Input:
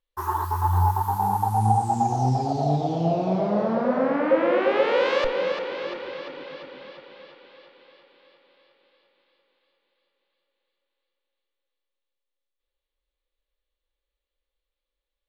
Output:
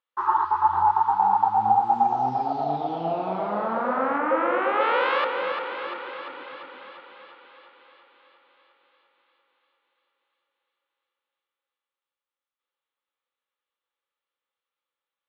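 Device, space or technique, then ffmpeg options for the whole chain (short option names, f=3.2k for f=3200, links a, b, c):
phone earpiece: -filter_complex "[0:a]highpass=340,equalizer=f=410:t=q:w=4:g=-5,equalizer=f=590:t=q:w=4:g=-6,equalizer=f=880:t=q:w=4:g=5,equalizer=f=1.3k:t=q:w=4:g=10,lowpass=f=3.6k:w=0.5412,lowpass=f=3.6k:w=1.3066,asettb=1/sr,asplit=3[a][b][c];[a]atrim=end=4.184[d];[b]atrim=start=4.18:end=4.81,asetpts=PTS-STARTPTS,afade=t=in:d=0.004:c=qsin,afade=t=out:st=0.626:d=0.004:c=qsin,highshelf=f=4.1k:g=-11.5[e];[c]atrim=start=4.806[f];[d][e]acrossfade=d=0.004:c1=hsin:c2=qsin[g];[g][f]acrossfade=d=0.004:c1=qsin:c2=hsin"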